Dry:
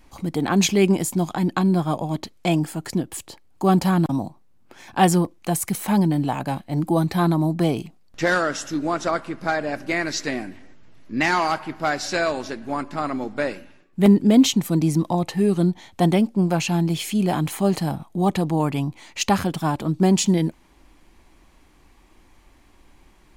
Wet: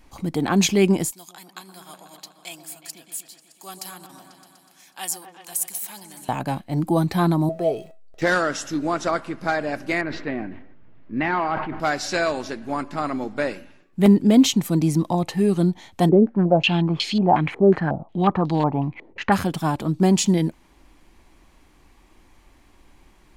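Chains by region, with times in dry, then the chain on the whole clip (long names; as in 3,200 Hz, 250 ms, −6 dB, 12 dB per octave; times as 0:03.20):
0:01.11–0:06.29: first difference + echo whose low-pass opens from repeat to repeat 123 ms, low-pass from 750 Hz, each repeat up 1 octave, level −6 dB
0:07.49–0:08.22: converter with a step at zero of −39 dBFS + flat-topped bell 530 Hz +14.5 dB 1.2 octaves + tuned comb filter 650 Hz, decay 0.22 s, mix 80%
0:10.01–0:11.80: high-frequency loss of the air 490 metres + level that may fall only so fast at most 53 dB per second
0:16.09–0:19.32: hard clipping −12.5 dBFS + low-pass on a step sequencer 5.5 Hz 440–4,300 Hz
whole clip: no processing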